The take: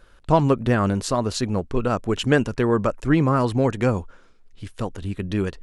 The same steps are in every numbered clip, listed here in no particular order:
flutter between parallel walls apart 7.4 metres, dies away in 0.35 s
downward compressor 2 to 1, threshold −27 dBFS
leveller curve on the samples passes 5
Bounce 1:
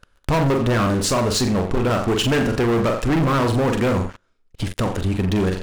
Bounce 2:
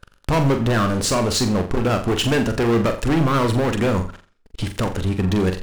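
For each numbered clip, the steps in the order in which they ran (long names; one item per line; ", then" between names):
flutter between parallel walls, then leveller curve on the samples, then downward compressor
leveller curve on the samples, then downward compressor, then flutter between parallel walls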